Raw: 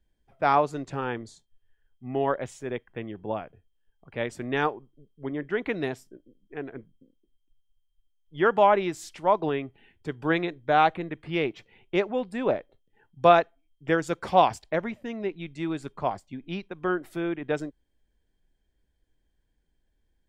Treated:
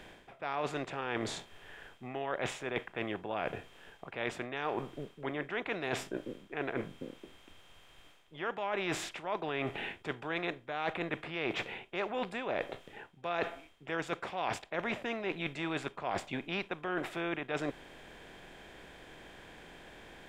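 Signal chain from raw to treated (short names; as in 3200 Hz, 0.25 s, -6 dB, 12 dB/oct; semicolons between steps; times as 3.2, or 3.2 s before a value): per-bin compression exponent 0.6; bell 2600 Hz +8.5 dB 1.5 oct; reverse; compressor 12:1, threshold -32 dBFS, peak gain reduction 23 dB; reverse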